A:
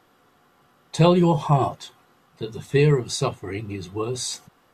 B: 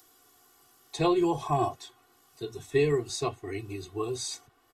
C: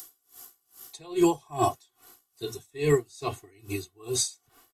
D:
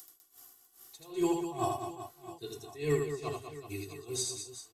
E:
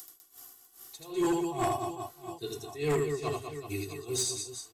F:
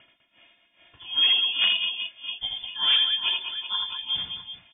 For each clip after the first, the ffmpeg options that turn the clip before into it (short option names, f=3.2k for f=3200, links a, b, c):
-filter_complex "[0:a]aecho=1:1:2.7:0.89,acrossover=split=130|770|5200[a][b][c][d];[d]acompressor=mode=upward:threshold=-38dB:ratio=2.5[e];[a][b][c][e]amix=inputs=4:normalize=0,volume=-9dB"
-af "crystalizer=i=2.5:c=0,aeval=exprs='val(0)*pow(10,-30*(0.5-0.5*cos(2*PI*2.4*n/s))/20)':c=same,volume=6dB"
-af "aecho=1:1:80|200|380|650|1055:0.631|0.398|0.251|0.158|0.1,volume=-8.5dB"
-af "aeval=exprs='0.126*sin(PI/2*2*val(0)/0.126)':c=same,volume=-5dB"
-af "lowpass=f=3.1k:t=q:w=0.5098,lowpass=f=3.1k:t=q:w=0.6013,lowpass=f=3.1k:t=q:w=0.9,lowpass=f=3.1k:t=q:w=2.563,afreqshift=-3600,volume=7dB"